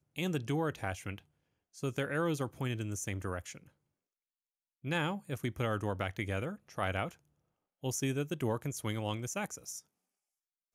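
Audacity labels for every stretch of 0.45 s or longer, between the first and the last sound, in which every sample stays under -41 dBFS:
1.180000	1.780000	silence
3.570000	4.850000	silence
7.090000	7.840000	silence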